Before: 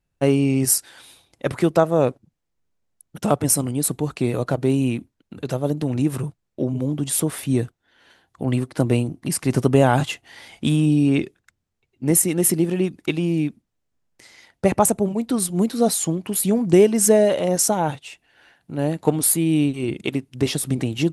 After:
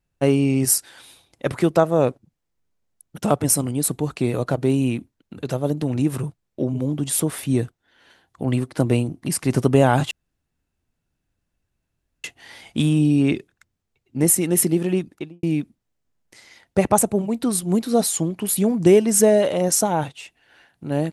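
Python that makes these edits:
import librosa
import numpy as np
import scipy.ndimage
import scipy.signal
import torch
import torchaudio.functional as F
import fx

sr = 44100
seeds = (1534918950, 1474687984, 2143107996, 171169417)

y = fx.studio_fade_out(x, sr, start_s=12.83, length_s=0.47)
y = fx.edit(y, sr, fx.insert_room_tone(at_s=10.11, length_s=2.13), tone=tone)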